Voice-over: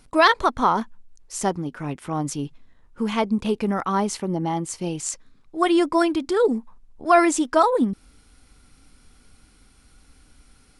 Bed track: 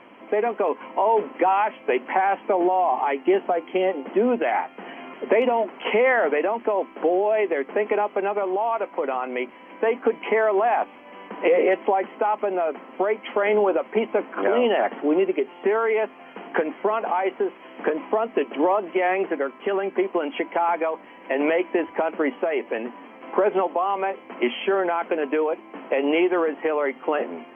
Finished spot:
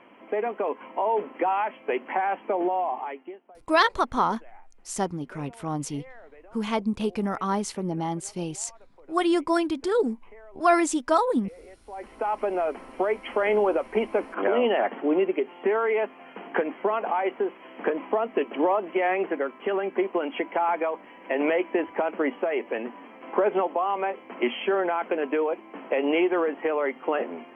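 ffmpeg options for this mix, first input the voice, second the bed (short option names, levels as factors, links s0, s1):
-filter_complex "[0:a]adelay=3550,volume=0.631[s0];[1:a]volume=11.9,afade=t=out:st=2.75:d=0.62:silence=0.0630957,afade=t=in:st=11.87:d=0.55:silence=0.0473151[s1];[s0][s1]amix=inputs=2:normalize=0"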